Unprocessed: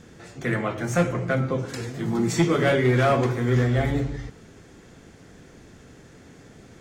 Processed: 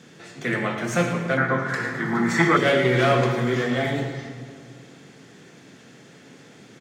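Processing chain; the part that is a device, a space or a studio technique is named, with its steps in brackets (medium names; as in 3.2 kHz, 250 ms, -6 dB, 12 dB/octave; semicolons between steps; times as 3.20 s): PA in a hall (high-pass 130 Hz 24 dB/octave; peaking EQ 3.2 kHz +6 dB 1.7 oct; delay 111 ms -11.5 dB; reverberation RT60 2.0 s, pre-delay 23 ms, DRR 5.5 dB); 1.37–2.57 s: FFT filter 520 Hz 0 dB, 1.8 kHz +14 dB, 2.6 kHz -5 dB; trim -1 dB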